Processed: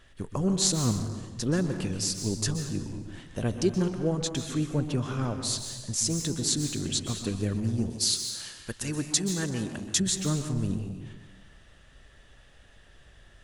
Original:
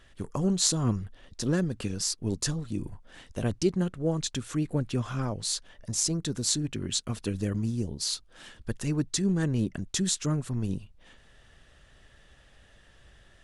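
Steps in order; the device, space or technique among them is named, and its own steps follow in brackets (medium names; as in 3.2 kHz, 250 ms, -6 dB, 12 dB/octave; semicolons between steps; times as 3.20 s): saturated reverb return (on a send at -5 dB: reverberation RT60 1.2 s, pre-delay 119 ms + saturation -24.5 dBFS, distortion -13 dB); 7.90–10.00 s: on the sum: tilt EQ +2 dB/octave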